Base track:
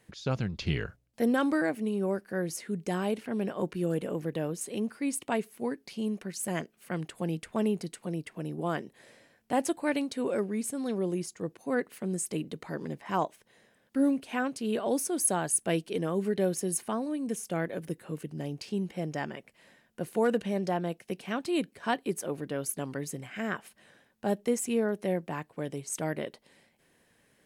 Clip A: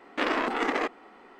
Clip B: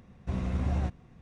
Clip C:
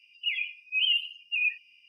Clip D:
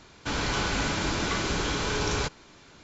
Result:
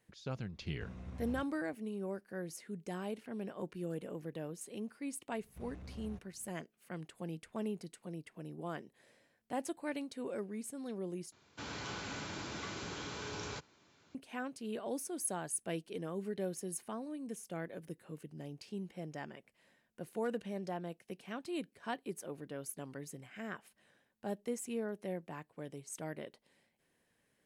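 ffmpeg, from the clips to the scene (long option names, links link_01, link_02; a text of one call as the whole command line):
ffmpeg -i bed.wav -i cue0.wav -i cue1.wav -i cue2.wav -i cue3.wav -filter_complex "[2:a]asplit=2[link_01][link_02];[0:a]volume=-10.5dB[link_03];[link_01]highpass=48[link_04];[link_02]asoftclip=type=tanh:threshold=-30dB[link_05];[4:a]highpass=frequency=78:width=0.5412,highpass=frequency=78:width=1.3066[link_06];[link_03]asplit=2[link_07][link_08];[link_07]atrim=end=11.324[link_09];[link_06]atrim=end=2.83,asetpts=PTS-STARTPTS,volume=-14.5dB[link_10];[link_08]atrim=start=14.146[link_11];[link_04]atrim=end=1.21,asetpts=PTS-STARTPTS,volume=-16dB,afade=type=in:duration=0.004:curve=hsin,afade=type=out:start_time=1.206:duration=0.004:curve=hsin,adelay=530[link_12];[link_05]atrim=end=1.21,asetpts=PTS-STARTPTS,volume=-15dB,afade=type=in:duration=0.004:curve=hsin,afade=type=out:start_time=1.206:duration=0.004:curve=hsin,adelay=233289S[link_13];[link_09][link_10]acrossfade=duration=0.004:curve1=hsin:curve2=hsin[link_14];[link_14][link_11]acrossfade=duration=0.004:curve1=hsin:curve2=hsin[link_15];[link_15][link_12][link_13]amix=inputs=3:normalize=0" out.wav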